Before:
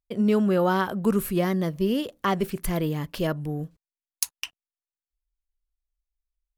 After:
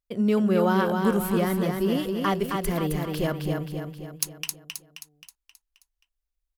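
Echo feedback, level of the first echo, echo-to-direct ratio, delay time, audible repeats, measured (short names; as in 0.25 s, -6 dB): 50%, -4.5 dB, -3.0 dB, 0.265 s, 6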